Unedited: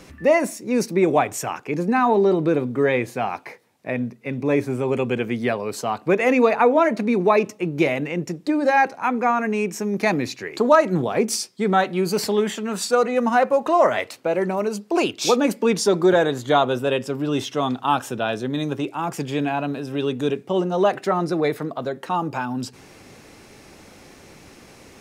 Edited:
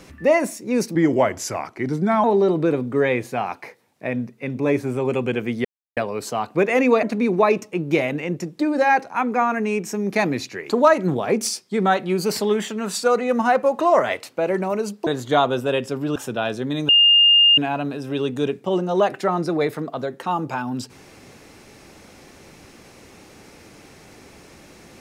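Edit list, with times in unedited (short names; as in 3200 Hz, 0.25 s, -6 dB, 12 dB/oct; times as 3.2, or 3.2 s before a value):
0.95–2.07 speed 87%
5.48 insert silence 0.32 s
6.54–6.9 cut
14.94–16.25 cut
17.34–17.99 cut
18.72–19.41 bleep 2820 Hz -10 dBFS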